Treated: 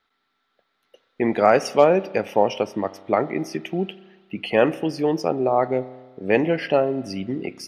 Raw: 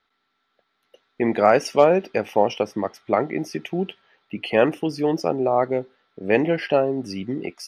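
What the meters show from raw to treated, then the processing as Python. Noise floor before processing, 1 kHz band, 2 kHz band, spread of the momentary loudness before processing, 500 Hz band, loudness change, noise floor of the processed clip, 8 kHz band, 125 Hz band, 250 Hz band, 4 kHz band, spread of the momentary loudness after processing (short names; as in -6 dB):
-73 dBFS, 0.0 dB, 0.0 dB, 12 LU, 0.0 dB, 0.0 dB, -73 dBFS, n/a, 0.0 dB, 0.0 dB, 0.0 dB, 12 LU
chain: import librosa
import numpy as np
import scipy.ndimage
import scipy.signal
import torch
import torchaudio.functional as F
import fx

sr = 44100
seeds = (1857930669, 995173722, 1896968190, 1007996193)

y = fx.rev_spring(x, sr, rt60_s=1.3, pass_ms=(31,), chirp_ms=30, drr_db=17.0)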